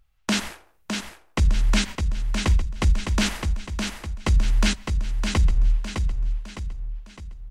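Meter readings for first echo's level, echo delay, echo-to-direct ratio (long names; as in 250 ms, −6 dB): −5.5 dB, 609 ms, −4.5 dB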